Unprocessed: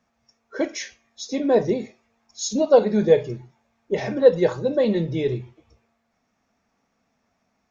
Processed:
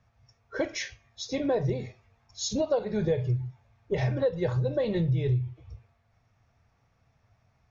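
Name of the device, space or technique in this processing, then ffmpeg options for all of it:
jukebox: -af "lowpass=5300,lowshelf=frequency=160:width_type=q:width=3:gain=11.5,acompressor=threshold=-24dB:ratio=5"

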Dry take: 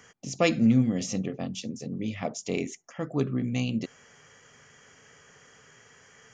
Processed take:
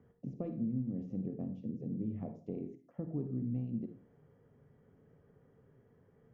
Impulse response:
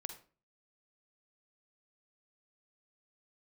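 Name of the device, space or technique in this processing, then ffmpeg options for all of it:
television next door: -filter_complex "[0:a]highshelf=frequency=3300:gain=8,acompressor=threshold=-32dB:ratio=5,lowpass=360[link_01];[1:a]atrim=start_sample=2205[link_02];[link_01][link_02]afir=irnorm=-1:irlink=0,volume=2.5dB"

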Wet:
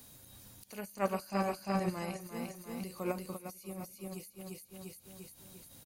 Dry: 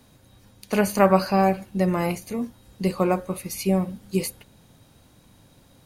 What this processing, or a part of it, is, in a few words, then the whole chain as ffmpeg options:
de-esser from a sidechain: -filter_complex "[0:a]asplit=3[link_01][link_02][link_03];[link_01]afade=type=out:start_time=0.94:duration=0.02[link_04];[link_02]lowpass=frequency=9300:width=0.5412,lowpass=frequency=9300:width=1.3066,afade=type=in:start_time=0.94:duration=0.02,afade=type=out:start_time=2.19:duration=0.02[link_05];[link_03]afade=type=in:start_time=2.19:duration=0.02[link_06];[link_04][link_05][link_06]amix=inputs=3:normalize=0,aemphasis=mode=production:type=75kf,aecho=1:1:348|696|1044|1392|1740:0.562|0.236|0.0992|0.0417|0.0175,asplit=2[link_07][link_08];[link_08]highpass=frequency=5500:width=0.5412,highpass=frequency=5500:width=1.3066,apad=whole_len=355010[link_09];[link_07][link_09]sidechaincompress=threshold=-48dB:ratio=8:attack=3.2:release=64,volume=-4.5dB"

